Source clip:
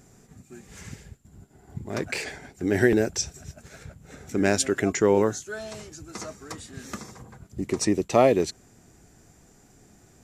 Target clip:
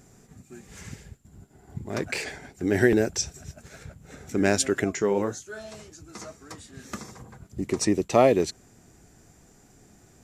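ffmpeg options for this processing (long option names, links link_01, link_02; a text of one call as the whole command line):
ffmpeg -i in.wav -filter_complex "[0:a]asettb=1/sr,asplit=3[link_01][link_02][link_03];[link_01]atrim=end=4.844[link_04];[link_02]atrim=start=4.84:end=6.93,asetpts=PTS-STARTPTS,afade=type=in:duration=0.004:curve=qsin,afade=type=out:start_time=2.086:duration=0.004:curve=qsin,flanger=delay=9.8:depth=5.6:regen=-53:speed=1.8:shape=triangular[link_05];[link_03]atrim=start=6.926[link_06];[link_04][link_05]acrossfade=duration=0.004:curve1=hsin:curve2=qsin[link_07];[link_07][link_06]acrossfade=duration=0.004:curve1=qsin:curve2=hsin" out.wav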